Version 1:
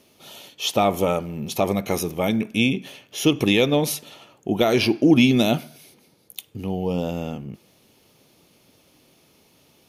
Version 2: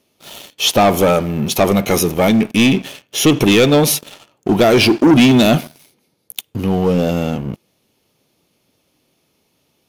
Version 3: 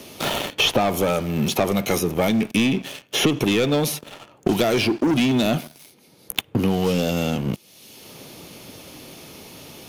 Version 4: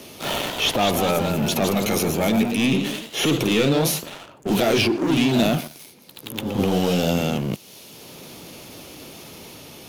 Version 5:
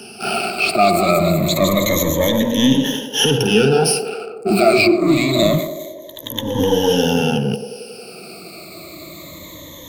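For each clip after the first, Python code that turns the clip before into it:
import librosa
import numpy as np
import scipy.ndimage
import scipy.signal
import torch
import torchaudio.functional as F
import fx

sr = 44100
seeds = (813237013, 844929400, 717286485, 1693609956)

y1 = fx.leveller(x, sr, passes=3)
y2 = fx.band_squash(y1, sr, depth_pct=100)
y2 = y2 * 10.0 ** (-8.0 / 20.0)
y3 = fx.transient(y2, sr, attack_db=-8, sustain_db=4)
y3 = fx.echo_pitch(y3, sr, ms=241, semitones=1, count=3, db_per_echo=-6.0)
y4 = fx.spec_ripple(y3, sr, per_octave=1.1, drift_hz=-0.26, depth_db=24)
y4 = fx.echo_banded(y4, sr, ms=90, feedback_pct=79, hz=480.0, wet_db=-9)
y4 = y4 * 10.0 ** (-1.0 / 20.0)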